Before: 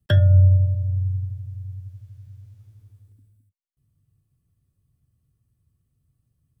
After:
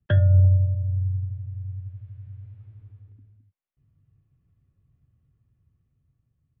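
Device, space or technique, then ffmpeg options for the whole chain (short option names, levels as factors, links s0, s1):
action camera in a waterproof case: -af "lowpass=f=2700:w=0.5412,lowpass=f=2700:w=1.3066,dynaudnorm=f=620:g=5:m=2,volume=0.75" -ar 48000 -c:a aac -b:a 96k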